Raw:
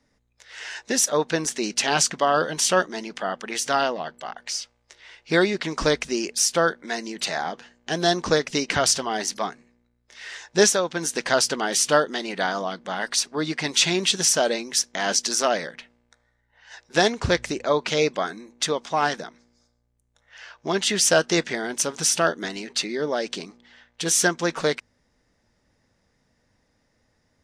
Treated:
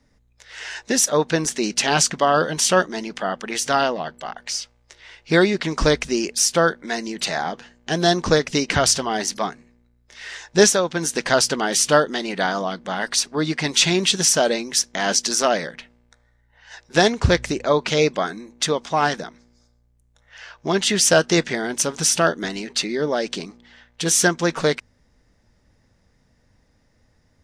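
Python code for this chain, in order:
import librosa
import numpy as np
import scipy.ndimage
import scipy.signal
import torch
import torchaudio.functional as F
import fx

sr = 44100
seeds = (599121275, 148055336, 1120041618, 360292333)

y = fx.low_shelf(x, sr, hz=140.0, db=9.5)
y = F.gain(torch.from_numpy(y), 2.5).numpy()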